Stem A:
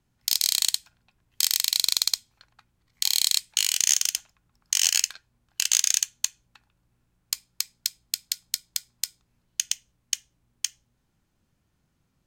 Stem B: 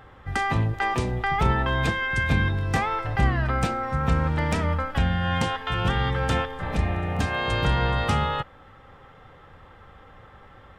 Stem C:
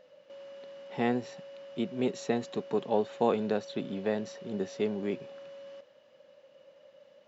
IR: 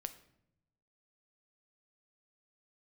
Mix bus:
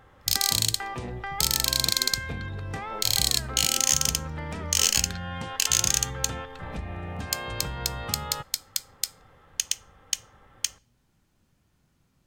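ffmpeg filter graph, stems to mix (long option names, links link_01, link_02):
-filter_complex "[0:a]alimiter=limit=-9dB:level=0:latency=1:release=227,aeval=exprs='0.355*(cos(1*acos(clip(val(0)/0.355,-1,1)))-cos(1*PI/2))+0.02*(cos(5*acos(clip(val(0)/0.355,-1,1)))-cos(5*PI/2))':channel_layout=same,volume=0.5dB,asplit=2[link_01][link_02];[link_02]volume=-13dB[link_03];[1:a]volume=-7dB[link_04];[2:a]volume=-12.5dB[link_05];[link_04][link_05]amix=inputs=2:normalize=0,acompressor=threshold=-30dB:ratio=6,volume=0dB[link_06];[3:a]atrim=start_sample=2205[link_07];[link_03][link_07]afir=irnorm=-1:irlink=0[link_08];[link_01][link_06][link_08]amix=inputs=3:normalize=0"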